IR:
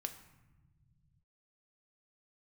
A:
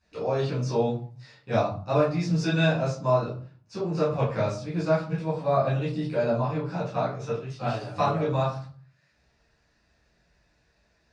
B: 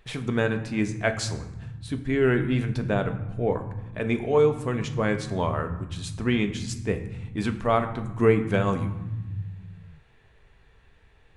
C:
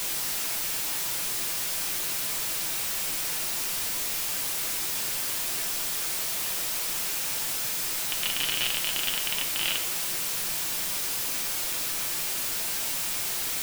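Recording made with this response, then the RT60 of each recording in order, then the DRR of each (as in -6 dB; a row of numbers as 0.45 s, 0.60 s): B; 0.45 s, 1.1 s, 0.65 s; -11.0 dB, 6.5 dB, 2.0 dB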